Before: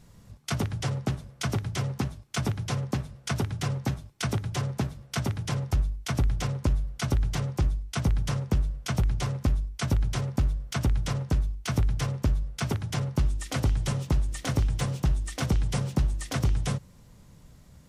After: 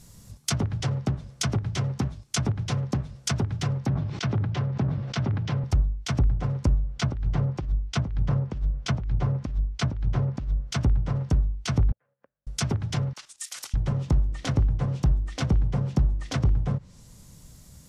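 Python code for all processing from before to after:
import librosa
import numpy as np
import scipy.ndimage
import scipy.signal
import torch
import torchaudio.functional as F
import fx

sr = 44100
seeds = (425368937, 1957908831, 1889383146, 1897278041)

y = fx.chain(x, sr, fx.highpass(hz=88.0, slope=24),
    fx.air_absorb(metres=160.0),
    fx.sustainer(db_per_s=41.0), at=(3.86, 5.64))
y = fx.chain(y, sr, fx.over_compress(threshold_db=-26.0, ratio=-0.5),
    fx.air_absorb(metres=58.0), at=(6.96, 10.61))
y = fx.chain(y, sr, fx.level_steps(step_db=10),
    fx.gate_flip(shuts_db=-28.0, range_db=-37),
    fx.cabinet(low_hz=310.0, low_slope=12, high_hz=2200.0, hz=(350.0, 540.0, 1600.0), db=(-9, 9, 9)), at=(11.92, 12.47))
y = fx.chain(y, sr, fx.cheby1_highpass(hz=1500.0, order=2),
    fx.level_steps(step_db=11), at=(13.13, 13.74))
y = fx.env_lowpass_down(y, sr, base_hz=1100.0, full_db=-23.0)
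y = fx.bass_treble(y, sr, bass_db=3, treble_db=13)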